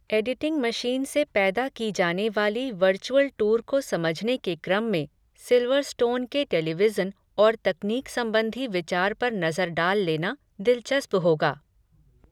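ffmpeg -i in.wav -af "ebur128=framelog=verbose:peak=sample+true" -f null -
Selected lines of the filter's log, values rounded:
Integrated loudness:
  I:         -24.9 LUFS
  Threshold: -35.1 LUFS
Loudness range:
  LRA:         1.2 LU
  Threshold: -45.0 LUFS
  LRA low:   -25.6 LUFS
  LRA high:  -24.4 LUFS
Sample peak:
  Peak:       -8.4 dBFS
True peak:
  Peak:       -8.4 dBFS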